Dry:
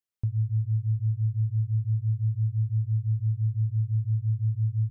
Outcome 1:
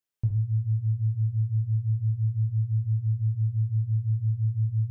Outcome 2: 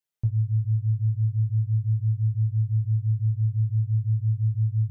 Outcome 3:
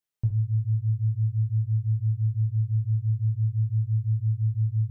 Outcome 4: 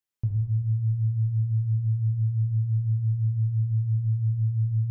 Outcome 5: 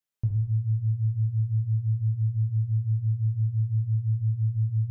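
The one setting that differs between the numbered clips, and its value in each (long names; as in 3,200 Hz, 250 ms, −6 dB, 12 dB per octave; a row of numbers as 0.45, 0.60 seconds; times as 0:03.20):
reverb whose tail is shaped and stops, gate: 200, 80, 120, 530, 310 milliseconds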